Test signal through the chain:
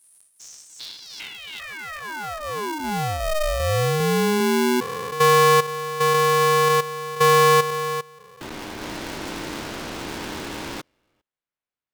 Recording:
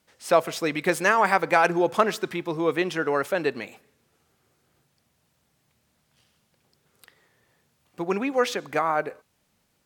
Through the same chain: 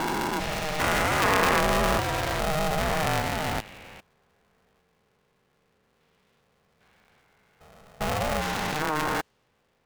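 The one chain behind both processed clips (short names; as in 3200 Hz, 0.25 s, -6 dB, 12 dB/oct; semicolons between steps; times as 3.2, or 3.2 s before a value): stepped spectrum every 0.4 s; low-pass opened by the level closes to 2500 Hz, open at -24 dBFS; polarity switched at an audio rate 310 Hz; gain +4 dB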